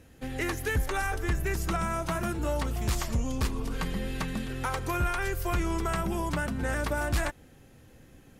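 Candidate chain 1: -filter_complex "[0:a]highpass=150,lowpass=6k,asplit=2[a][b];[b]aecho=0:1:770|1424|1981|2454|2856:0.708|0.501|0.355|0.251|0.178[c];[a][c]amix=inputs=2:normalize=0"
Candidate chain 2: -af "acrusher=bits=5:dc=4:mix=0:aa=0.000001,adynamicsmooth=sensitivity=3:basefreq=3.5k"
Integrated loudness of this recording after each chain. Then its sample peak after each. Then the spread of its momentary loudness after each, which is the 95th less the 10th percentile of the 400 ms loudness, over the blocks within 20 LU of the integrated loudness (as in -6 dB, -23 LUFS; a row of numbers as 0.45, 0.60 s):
-30.5, -31.0 LUFS; -16.0, -18.0 dBFS; 3, 6 LU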